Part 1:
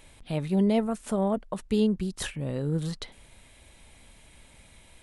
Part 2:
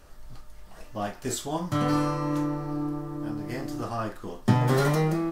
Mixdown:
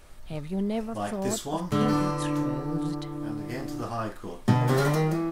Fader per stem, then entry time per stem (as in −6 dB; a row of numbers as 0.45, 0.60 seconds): −5.5, −0.5 decibels; 0.00, 0.00 seconds